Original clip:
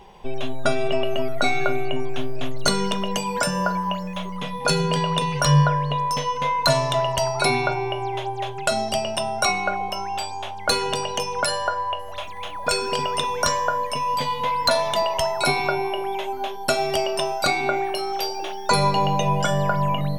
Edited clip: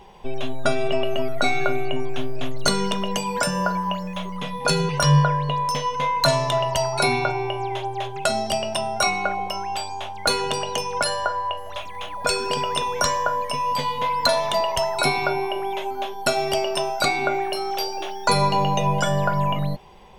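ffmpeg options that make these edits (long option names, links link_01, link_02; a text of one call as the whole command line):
ffmpeg -i in.wav -filter_complex "[0:a]asplit=2[link_01][link_02];[link_01]atrim=end=4.892[link_03];[link_02]atrim=start=5.308[link_04];[link_03][link_04]acrossfade=duration=0.004:curve1=hsin:curve2=hsin" out.wav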